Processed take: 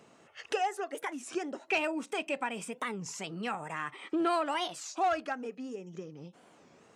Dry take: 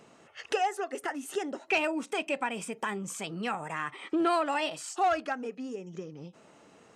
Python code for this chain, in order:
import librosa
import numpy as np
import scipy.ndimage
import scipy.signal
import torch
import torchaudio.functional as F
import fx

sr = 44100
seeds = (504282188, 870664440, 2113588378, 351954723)

y = scipy.signal.sosfilt(scipy.signal.butter(2, 51.0, 'highpass', fs=sr, output='sos'), x)
y = fx.record_warp(y, sr, rpm=33.33, depth_cents=250.0)
y = y * librosa.db_to_amplitude(-2.5)